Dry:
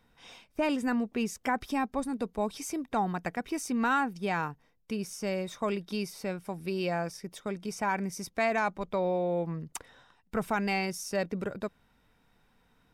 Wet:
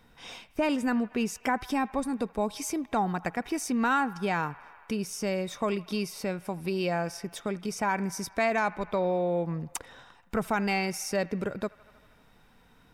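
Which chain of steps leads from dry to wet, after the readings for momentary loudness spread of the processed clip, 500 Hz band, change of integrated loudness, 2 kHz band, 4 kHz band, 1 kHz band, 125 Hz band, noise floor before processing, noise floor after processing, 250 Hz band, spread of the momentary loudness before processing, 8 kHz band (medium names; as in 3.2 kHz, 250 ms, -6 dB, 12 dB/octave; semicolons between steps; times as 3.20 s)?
9 LU, +2.0 dB, +2.0 dB, +2.0 dB, +3.0 dB, +2.0 dB, +2.5 dB, -68 dBFS, -60 dBFS, +2.0 dB, 10 LU, +3.5 dB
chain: feedback echo behind a band-pass 79 ms, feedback 72%, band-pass 1.5 kHz, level -20.5 dB; in parallel at +2 dB: compression, threshold -42 dBFS, peak gain reduction 17.5 dB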